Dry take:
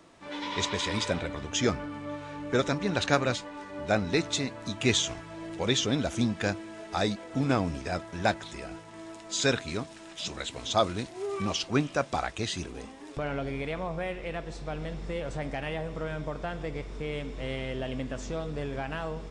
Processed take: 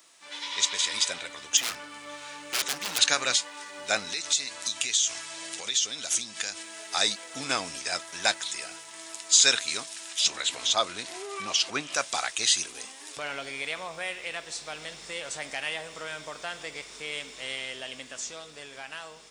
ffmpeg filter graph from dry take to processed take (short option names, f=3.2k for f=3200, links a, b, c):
-filter_complex "[0:a]asettb=1/sr,asplit=3[a][b][c];[a]atrim=end=1.574[d];[b]atrim=start=1.57:end=2.99,asetpts=PTS-STARTPTS,afade=t=in:d=0.004:c=qsin,afade=t=out:st=1.416:d=0.004:c=qsin,acrossover=split=3500[e][f];[f]acompressor=threshold=-46dB:ratio=4:attack=1:release=60[g];[e][g]amix=inputs=2:normalize=0,aeval=exprs='0.0422*(abs(mod(val(0)/0.0422+3,4)-2)-1)':c=same[h];[c]atrim=start=2.986[i];[d][h]acrossfade=d=0.004:c1=hsin:c2=qsin[j];[j][i]acrossfade=d=0.004:c1=qsin:c2=hsin,asettb=1/sr,asplit=3[k][l][m];[k]atrim=end=4.124[n];[l]atrim=start=4.12:end=6.63,asetpts=PTS-STARTPTS,afade=t=in:d=0.004:c=qsin,afade=t=out:st=2.506:d=0.004:c=qsin,lowpass=8.7k,highshelf=f=3.6k:g=8.5,acompressor=threshold=-33dB:ratio=8:attack=3.2:release=140:knee=1:detection=peak[o];[m]atrim=start=6.626[p];[n][o]acrossfade=d=0.004:c1=hsin:c2=qsin[q];[q][p]acrossfade=d=0.004:c1=qsin:c2=hsin,asettb=1/sr,asplit=3[r][s][t];[r]atrim=end=10.264[u];[s]atrim=start=10.26:end=11.95,asetpts=PTS-STARTPTS,afade=t=in:d=0.004:c=qsin,afade=t=out:st=1.686:d=0.004:c=qsin,highshelf=f=3.9k:g=-11.5,acompressor=mode=upward:threshold=-27dB:ratio=2.5:attack=3.2:release=140:knee=2.83:detection=peak[v];[t]atrim=start=11.946[w];[u][v]acrossfade=d=0.004:c1=hsin:c2=qsin[x];[x][w]acrossfade=d=0.004:c1=qsin:c2=hsin,aderivative,dynaudnorm=f=160:g=21:m=5.5dB,alimiter=level_in=17dB:limit=-1dB:release=50:level=0:latency=1,volume=-6dB"